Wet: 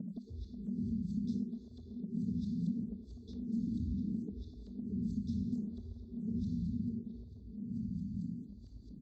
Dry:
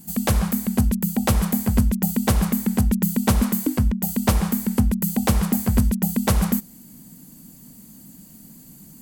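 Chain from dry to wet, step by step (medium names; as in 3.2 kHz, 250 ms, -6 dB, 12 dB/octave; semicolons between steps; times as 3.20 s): brick-wall FIR band-stop 450–3400 Hz; delay 617 ms -11 dB; harmonic-percussive split percussive -5 dB; 0.64–2.68 s: high-pass 130 Hz 12 dB/octave; LFO low-pass saw up 4.5 Hz 400–3900 Hz; high-order bell 5.6 kHz +10.5 dB 1 oct; reverberation RT60 3.5 s, pre-delay 3 ms, DRR -4 dB; compression 4:1, threshold -45 dBFS, peak gain reduction 37.5 dB; lamp-driven phase shifter 0.72 Hz; trim +3.5 dB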